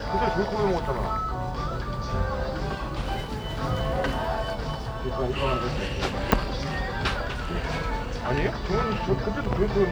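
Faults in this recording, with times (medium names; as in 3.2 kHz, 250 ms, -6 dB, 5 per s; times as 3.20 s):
6.32 s: pop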